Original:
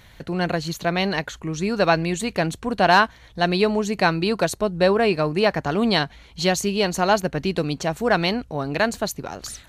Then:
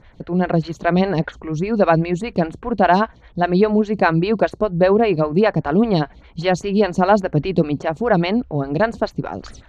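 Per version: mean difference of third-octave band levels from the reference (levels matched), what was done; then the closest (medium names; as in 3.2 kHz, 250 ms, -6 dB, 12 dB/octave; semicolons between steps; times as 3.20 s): 6.5 dB: bass shelf 350 Hz +9 dB; level rider; distance through air 140 m; lamp-driven phase shifter 5 Hz; trim +1 dB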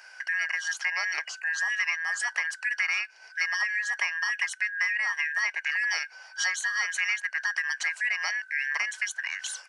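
16.5 dB: four frequency bands reordered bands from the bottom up 2143; compression 6:1, threshold -25 dBFS, peak gain reduction 14 dB; resampled via 22.05 kHz; high-pass 740 Hz 24 dB/octave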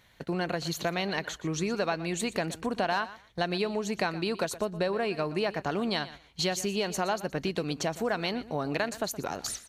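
4.0 dB: gate -36 dBFS, range -10 dB; bass shelf 110 Hz -10.5 dB; compression 5:1, threshold -27 dBFS, peak gain reduction 14.5 dB; on a send: feedback delay 120 ms, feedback 18%, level -16 dB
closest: third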